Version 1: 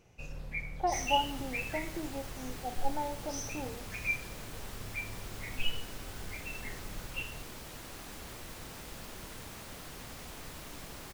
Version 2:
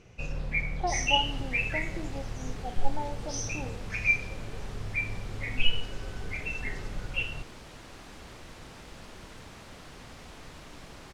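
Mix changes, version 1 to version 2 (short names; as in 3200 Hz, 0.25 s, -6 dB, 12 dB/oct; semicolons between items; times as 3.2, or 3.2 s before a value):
first sound +9.0 dB; master: add air absorption 62 m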